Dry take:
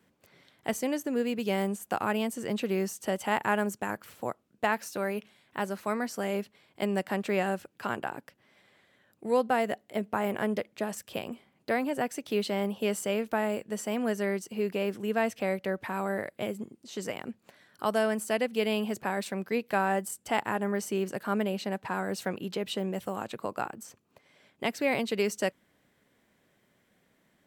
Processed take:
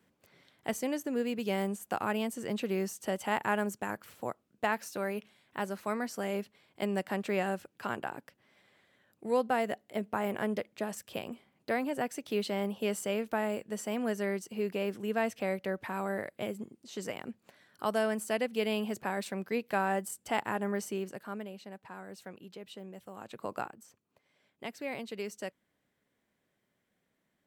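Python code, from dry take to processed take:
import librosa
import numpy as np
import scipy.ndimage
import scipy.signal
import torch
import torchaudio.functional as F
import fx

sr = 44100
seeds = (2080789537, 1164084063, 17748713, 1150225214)

y = fx.gain(x, sr, db=fx.line((20.8, -3.0), (21.54, -14.0), (23.07, -14.0), (23.56, -1.5), (23.76, -10.5)))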